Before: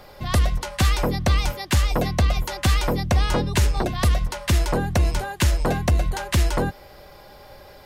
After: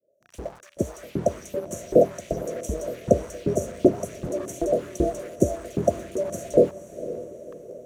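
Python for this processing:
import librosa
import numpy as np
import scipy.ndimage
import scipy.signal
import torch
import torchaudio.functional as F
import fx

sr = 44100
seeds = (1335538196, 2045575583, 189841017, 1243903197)

p1 = fx.fade_in_head(x, sr, length_s=1.41)
p2 = fx.brickwall_bandstop(p1, sr, low_hz=700.0, high_hz=5600.0)
p3 = fx.quant_dither(p2, sr, seeds[0], bits=6, dither='none')
p4 = p2 + (p3 * librosa.db_to_amplitude(-5.0))
p5 = fx.highpass(p4, sr, hz=110.0, slope=6)
p6 = fx.low_shelf(p5, sr, hz=240.0, db=7.0)
p7 = fx.filter_lfo_highpass(p6, sr, shape='saw_up', hz=2.6, low_hz=340.0, high_hz=3300.0, q=1.8)
p8 = fx.riaa(p7, sr, side='playback')
y = p8 + fx.echo_diffused(p8, sr, ms=512, feedback_pct=44, wet_db=-13.5, dry=0)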